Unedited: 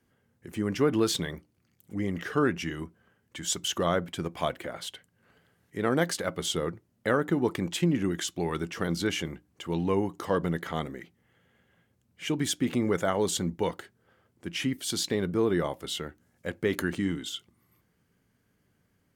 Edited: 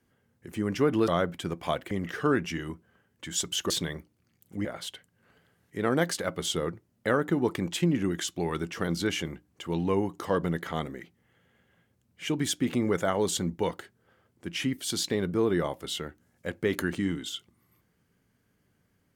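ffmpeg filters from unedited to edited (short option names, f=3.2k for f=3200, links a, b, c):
-filter_complex "[0:a]asplit=5[a][b][c][d][e];[a]atrim=end=1.082[f];[b]atrim=start=3.818:end=4.652[g];[c]atrim=start=2.028:end=3.822[h];[d]atrim=start=1.078:end=2.032[i];[e]atrim=start=4.648[j];[f][g]acrossfade=d=0.004:c1=hsin:c2=hsin[k];[k][h]acrossfade=d=0.004:c1=hsin:c2=hsin[l];[l][i]acrossfade=d=0.004:c1=hsin:c2=hsin[m];[m][j]acrossfade=d=0.004:c1=hsin:c2=hsin"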